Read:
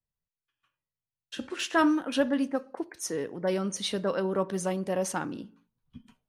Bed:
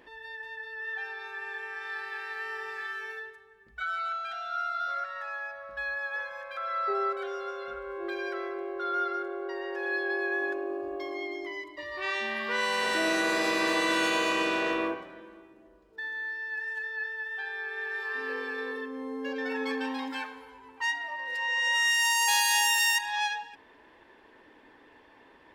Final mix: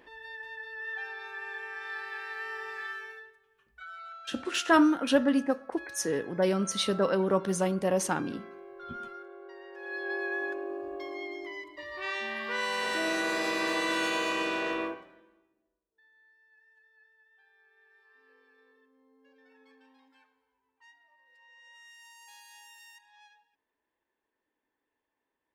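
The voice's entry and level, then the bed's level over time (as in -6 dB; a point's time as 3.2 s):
2.95 s, +2.0 dB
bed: 2.91 s -1.5 dB
3.41 s -12 dB
9.72 s -12 dB
10.12 s -3 dB
14.82 s -3 dB
15.88 s -29 dB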